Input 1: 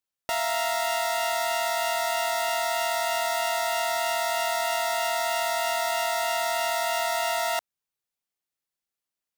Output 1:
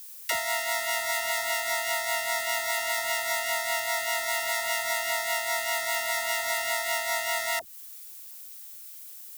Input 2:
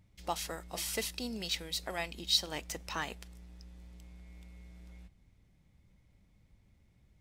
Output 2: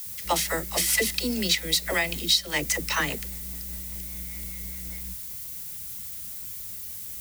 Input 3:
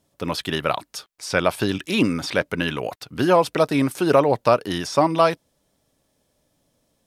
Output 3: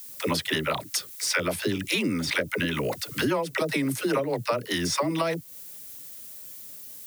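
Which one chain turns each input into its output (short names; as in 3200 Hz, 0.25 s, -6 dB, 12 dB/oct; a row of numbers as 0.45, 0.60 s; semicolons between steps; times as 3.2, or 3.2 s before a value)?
HPF 46 Hz; bell 2000 Hz +8.5 dB 0.28 oct; notch 730 Hz, Q 12; dispersion lows, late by 68 ms, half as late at 380 Hz; rotary speaker horn 5 Hz; added noise blue -58 dBFS; high shelf 6200 Hz +8.5 dB; compressor 6:1, threshold -32 dBFS; match loudness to -27 LUFS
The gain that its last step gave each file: +6.0, +13.0, +8.0 dB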